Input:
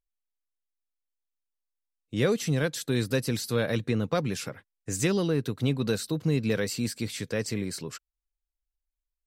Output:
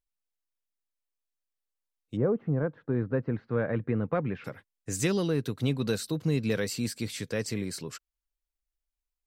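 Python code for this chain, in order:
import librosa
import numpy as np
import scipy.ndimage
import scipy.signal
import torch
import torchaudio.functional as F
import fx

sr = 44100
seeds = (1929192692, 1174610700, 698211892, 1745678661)

y = fx.lowpass(x, sr, hz=fx.line((2.15, 1100.0), (4.44, 2300.0)), slope=24, at=(2.15, 4.44), fade=0.02)
y = y * librosa.db_to_amplitude(-1.5)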